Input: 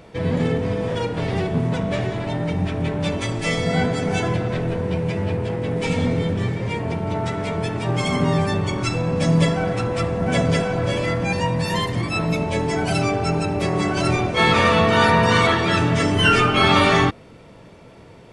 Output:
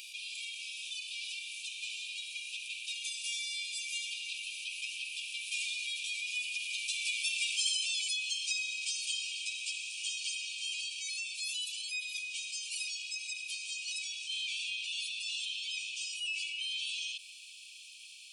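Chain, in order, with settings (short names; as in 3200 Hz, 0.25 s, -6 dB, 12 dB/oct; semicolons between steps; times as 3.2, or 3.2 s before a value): Doppler pass-by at 7.48, 18 m/s, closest 5.2 m; brick-wall FIR high-pass 2300 Hz; high shelf 8000 Hz +11 dB; fast leveller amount 70%; gain -2 dB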